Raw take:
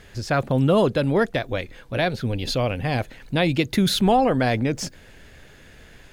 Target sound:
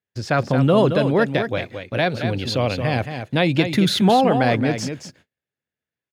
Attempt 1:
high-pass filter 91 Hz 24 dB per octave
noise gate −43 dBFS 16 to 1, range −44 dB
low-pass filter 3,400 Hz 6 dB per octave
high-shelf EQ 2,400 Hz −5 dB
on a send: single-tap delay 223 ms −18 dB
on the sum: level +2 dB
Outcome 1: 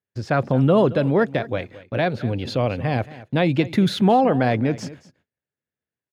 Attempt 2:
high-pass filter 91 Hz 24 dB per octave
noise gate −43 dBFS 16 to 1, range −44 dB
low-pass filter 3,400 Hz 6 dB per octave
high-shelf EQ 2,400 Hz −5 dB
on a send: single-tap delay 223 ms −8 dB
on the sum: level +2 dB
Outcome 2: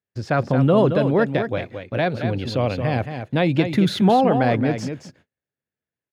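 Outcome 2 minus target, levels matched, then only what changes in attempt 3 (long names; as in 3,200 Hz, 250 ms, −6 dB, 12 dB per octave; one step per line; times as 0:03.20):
4,000 Hz band −5.5 dB
change: high-shelf EQ 2,400 Hz +4 dB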